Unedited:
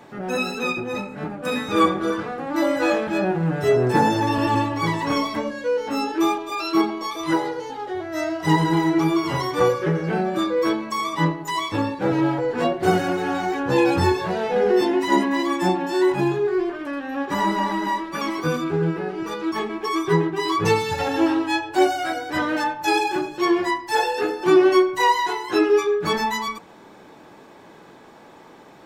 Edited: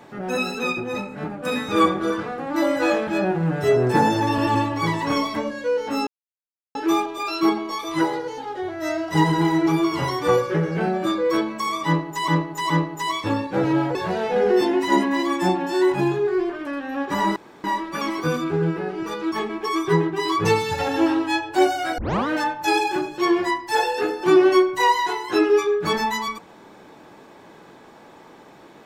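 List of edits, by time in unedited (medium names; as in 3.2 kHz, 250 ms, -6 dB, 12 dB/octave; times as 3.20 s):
6.07 s: insert silence 0.68 s
11.18–11.60 s: loop, 3 plays
12.43–14.15 s: delete
17.56–17.84 s: room tone
22.18 s: tape start 0.29 s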